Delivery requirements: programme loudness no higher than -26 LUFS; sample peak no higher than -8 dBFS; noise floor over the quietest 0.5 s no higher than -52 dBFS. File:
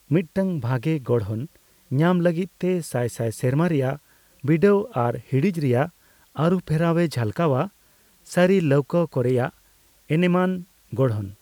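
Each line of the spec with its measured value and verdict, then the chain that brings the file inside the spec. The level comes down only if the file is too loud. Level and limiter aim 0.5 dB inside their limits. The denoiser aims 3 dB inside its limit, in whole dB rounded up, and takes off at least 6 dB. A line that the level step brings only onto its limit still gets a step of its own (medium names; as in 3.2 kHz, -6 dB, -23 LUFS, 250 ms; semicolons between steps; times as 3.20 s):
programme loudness -23.0 LUFS: fail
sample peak -7.5 dBFS: fail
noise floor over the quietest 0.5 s -58 dBFS: pass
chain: trim -3.5 dB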